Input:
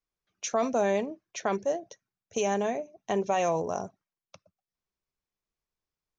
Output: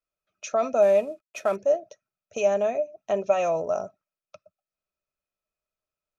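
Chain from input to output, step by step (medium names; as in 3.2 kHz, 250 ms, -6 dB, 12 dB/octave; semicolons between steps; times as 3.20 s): 0.82–1.56 s: CVSD coder 64 kbps; small resonant body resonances 610/1300/2500 Hz, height 16 dB, ringing for 40 ms; trim -4.5 dB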